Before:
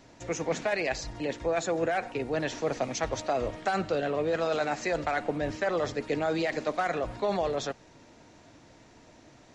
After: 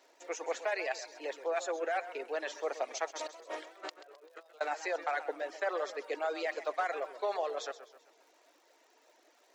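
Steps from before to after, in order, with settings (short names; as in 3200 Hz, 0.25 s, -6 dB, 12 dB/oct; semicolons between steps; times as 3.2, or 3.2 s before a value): on a send: flutter echo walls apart 10.9 m, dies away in 0.22 s; on the sum: dynamic EQ 1100 Hz, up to +4 dB, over -39 dBFS, Q 0.72; 3.1–4.61 negative-ratio compressor -37 dBFS, ratio -0.5; reverb removal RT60 0.77 s; crackle 190/s -51 dBFS; inverse Chebyshev high-pass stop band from 190 Hz, stop band 40 dB; warbling echo 0.13 s, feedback 45%, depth 122 cents, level -13.5 dB; gain -6.5 dB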